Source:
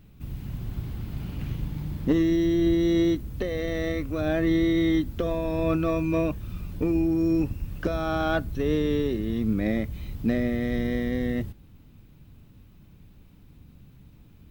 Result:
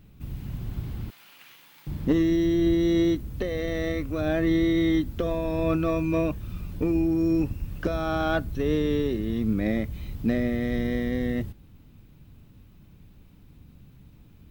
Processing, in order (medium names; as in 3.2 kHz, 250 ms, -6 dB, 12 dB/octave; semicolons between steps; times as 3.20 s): 1.10–1.87 s: high-pass 1.3 kHz 12 dB/octave